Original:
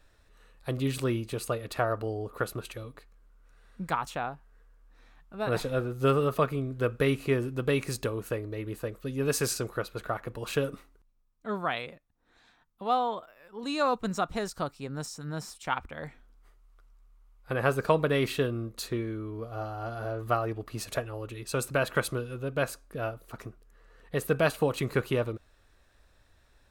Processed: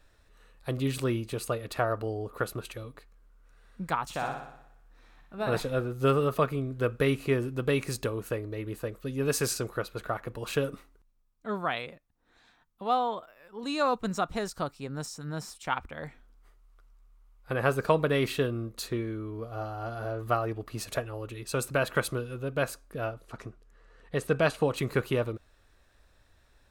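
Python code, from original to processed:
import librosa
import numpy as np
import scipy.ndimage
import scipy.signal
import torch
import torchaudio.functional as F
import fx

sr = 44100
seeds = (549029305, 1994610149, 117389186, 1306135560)

y = fx.room_flutter(x, sr, wall_m=10.3, rt60_s=0.77, at=(4.04, 5.55))
y = fx.lowpass(y, sr, hz=8700.0, slope=12, at=(23.05, 24.76))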